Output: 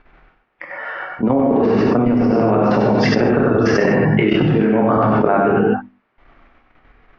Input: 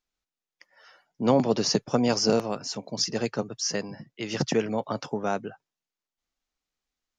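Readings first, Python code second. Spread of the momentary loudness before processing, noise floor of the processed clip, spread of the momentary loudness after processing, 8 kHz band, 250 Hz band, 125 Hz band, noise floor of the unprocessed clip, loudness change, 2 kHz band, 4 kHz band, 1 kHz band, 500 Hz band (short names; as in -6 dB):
11 LU, -61 dBFS, 8 LU, under -10 dB, +13.5 dB, +15.0 dB, under -85 dBFS, +11.5 dB, +15.5 dB, -1.5 dB, +13.5 dB, +12.0 dB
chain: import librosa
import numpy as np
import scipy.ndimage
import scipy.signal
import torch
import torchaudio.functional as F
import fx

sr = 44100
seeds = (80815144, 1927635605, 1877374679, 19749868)

y = scipy.signal.sosfilt(scipy.signal.butter(4, 2100.0, 'lowpass', fs=sr, output='sos'), x)
y = fx.hum_notches(y, sr, base_hz=50, count=6)
y = fx.dynamic_eq(y, sr, hz=260.0, q=1.3, threshold_db=-35.0, ratio=4.0, max_db=5)
y = fx.auto_swell(y, sr, attack_ms=118.0)
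y = fx.level_steps(y, sr, step_db=18)
y = y + 10.0 ** (-5.5 / 20.0) * np.pad(y, (int(96 * sr / 1000.0), 0))[:len(y)]
y = fx.rev_gated(y, sr, seeds[0], gate_ms=170, shape='flat', drr_db=-1.5)
y = fx.env_flatten(y, sr, amount_pct=100)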